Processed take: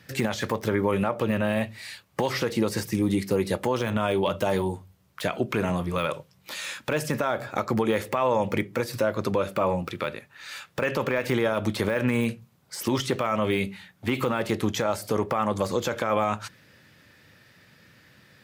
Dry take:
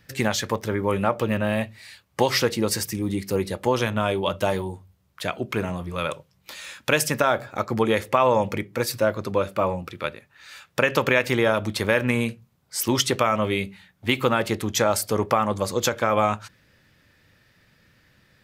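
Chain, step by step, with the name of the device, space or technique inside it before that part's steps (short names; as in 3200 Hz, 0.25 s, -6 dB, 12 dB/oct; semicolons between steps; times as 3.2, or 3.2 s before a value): podcast mastering chain (HPF 100 Hz 12 dB/oct; de-esser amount 80%; compressor 4:1, threshold -23 dBFS, peak gain reduction 7.5 dB; limiter -18 dBFS, peak gain reduction 8 dB; gain +5 dB; MP3 96 kbps 44100 Hz)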